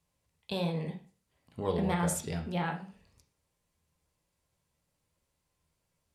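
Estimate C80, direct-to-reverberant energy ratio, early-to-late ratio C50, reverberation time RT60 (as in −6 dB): 15.0 dB, 3.0 dB, 10.0 dB, 0.40 s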